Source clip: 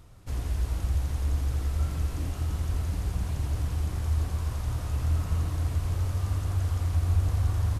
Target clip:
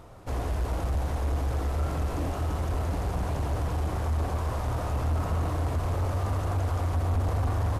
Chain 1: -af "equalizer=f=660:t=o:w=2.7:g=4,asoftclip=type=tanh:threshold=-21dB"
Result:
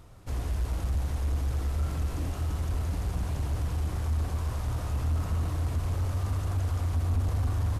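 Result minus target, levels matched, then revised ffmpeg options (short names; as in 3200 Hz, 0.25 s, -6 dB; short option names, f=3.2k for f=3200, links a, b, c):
500 Hz band -7.0 dB
-af "equalizer=f=660:t=o:w=2.7:g=14,asoftclip=type=tanh:threshold=-21dB"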